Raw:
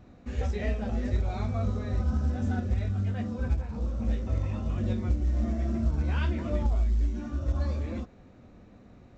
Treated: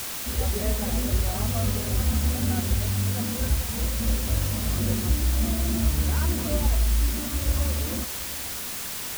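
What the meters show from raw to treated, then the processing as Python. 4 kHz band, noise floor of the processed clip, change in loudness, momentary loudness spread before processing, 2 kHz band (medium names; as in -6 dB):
+18.0 dB, -33 dBFS, +4.5 dB, 4 LU, +8.0 dB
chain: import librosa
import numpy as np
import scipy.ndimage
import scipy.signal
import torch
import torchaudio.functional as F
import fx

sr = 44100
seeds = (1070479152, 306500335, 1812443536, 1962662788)

y = scipy.signal.sosfilt(scipy.signal.butter(4, 1500.0, 'lowpass', fs=sr, output='sos'), x)
y = fx.quant_dither(y, sr, seeds[0], bits=6, dither='triangular')
y = y + 10.0 ** (-21.5 / 20.0) * np.pad(y, (int(723 * sr / 1000.0), 0))[:len(y)]
y = y * 10.0 ** (3.0 / 20.0)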